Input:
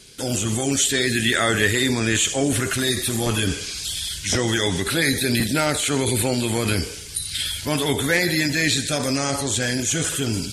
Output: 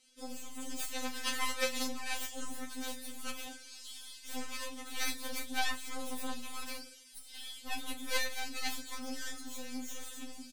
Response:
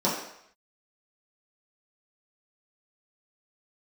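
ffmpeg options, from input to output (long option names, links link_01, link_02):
-filter_complex "[0:a]aeval=exprs='0.596*(cos(1*acos(clip(val(0)/0.596,-1,1)))-cos(1*PI/2))+0.237*(cos(3*acos(clip(val(0)/0.596,-1,1)))-cos(3*PI/2))+0.0075*(cos(5*acos(clip(val(0)/0.596,-1,1)))-cos(5*PI/2))+0.00531*(cos(8*acos(clip(val(0)/0.596,-1,1)))-cos(8*PI/2))':channel_layout=same,asplit=2[link_01][link_02];[link_02]adelay=36,volume=-10.5dB[link_03];[link_01][link_03]amix=inputs=2:normalize=0,afftfilt=real='re*3.46*eq(mod(b,12),0)':imag='im*3.46*eq(mod(b,12),0)':win_size=2048:overlap=0.75"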